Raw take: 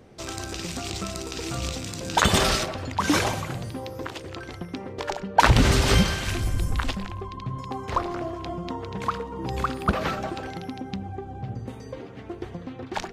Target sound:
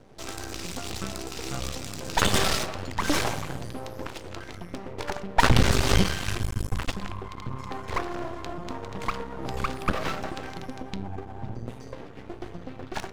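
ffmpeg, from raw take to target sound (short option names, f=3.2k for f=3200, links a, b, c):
-af "flanger=delay=6.8:depth=3.9:regen=86:speed=0.58:shape=sinusoidal,aeval=exprs='max(val(0),0)':c=same,volume=6dB"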